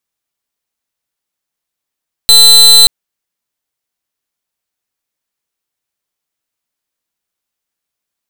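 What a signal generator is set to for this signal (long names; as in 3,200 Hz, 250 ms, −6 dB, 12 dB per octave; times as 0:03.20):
pulse wave 4,050 Hz, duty 34% −3.5 dBFS 0.58 s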